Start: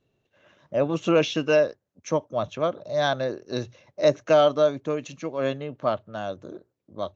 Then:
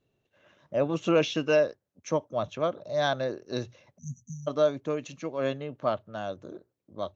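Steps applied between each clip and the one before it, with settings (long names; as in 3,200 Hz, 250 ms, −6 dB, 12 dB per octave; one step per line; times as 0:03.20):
time-frequency box erased 0:03.98–0:04.47, 250–5,800 Hz
level −3 dB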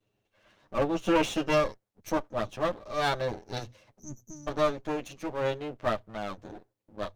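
lower of the sound and its delayed copy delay 9.5 ms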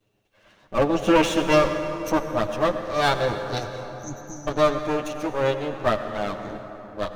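convolution reverb RT60 4.0 s, pre-delay 78 ms, DRR 7.5 dB
level +6.5 dB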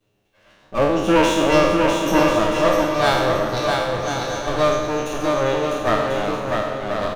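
peak hold with a decay on every bin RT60 1.00 s
on a send: bouncing-ball delay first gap 650 ms, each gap 0.6×, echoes 5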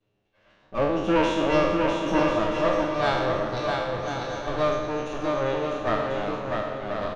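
high-frequency loss of the air 120 metres
level −5.5 dB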